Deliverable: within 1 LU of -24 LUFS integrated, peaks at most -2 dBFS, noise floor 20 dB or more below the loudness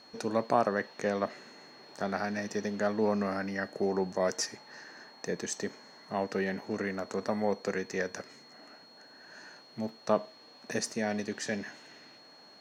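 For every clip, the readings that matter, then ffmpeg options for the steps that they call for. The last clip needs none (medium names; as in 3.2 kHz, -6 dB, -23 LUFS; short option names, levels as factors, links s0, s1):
steady tone 4.3 kHz; tone level -55 dBFS; loudness -33.0 LUFS; peak level -12.0 dBFS; loudness target -24.0 LUFS
-> -af "bandreject=f=4300:w=30"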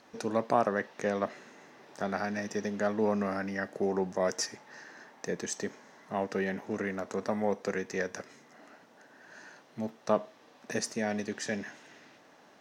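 steady tone not found; loudness -33.0 LUFS; peak level -12.0 dBFS; loudness target -24.0 LUFS
-> -af "volume=2.82"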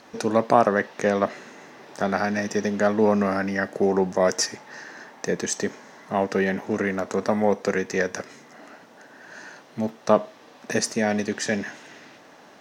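loudness -24.0 LUFS; peak level -3.0 dBFS; noise floor -50 dBFS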